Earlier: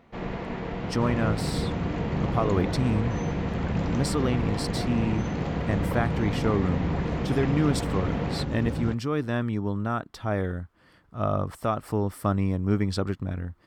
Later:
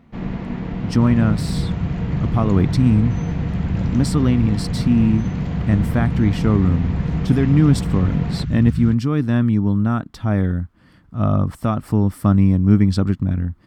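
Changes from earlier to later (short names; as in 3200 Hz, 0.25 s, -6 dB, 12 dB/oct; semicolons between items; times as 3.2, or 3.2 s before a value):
speech +3.0 dB; second sound: add inverse Chebyshev band-stop 260–780 Hz; master: add resonant low shelf 320 Hz +7.5 dB, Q 1.5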